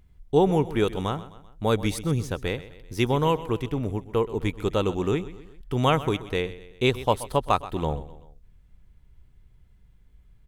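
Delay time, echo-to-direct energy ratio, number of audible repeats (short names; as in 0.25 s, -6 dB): 0.128 s, -15.0 dB, 3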